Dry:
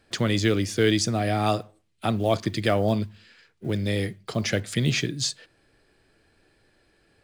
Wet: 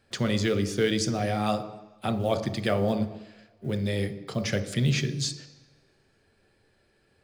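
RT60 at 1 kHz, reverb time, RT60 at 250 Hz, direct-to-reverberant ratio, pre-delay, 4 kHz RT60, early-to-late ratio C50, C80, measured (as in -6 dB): 1.2 s, 1.1 s, 1.0 s, 7.5 dB, 3 ms, 1.3 s, 11.5 dB, 13.5 dB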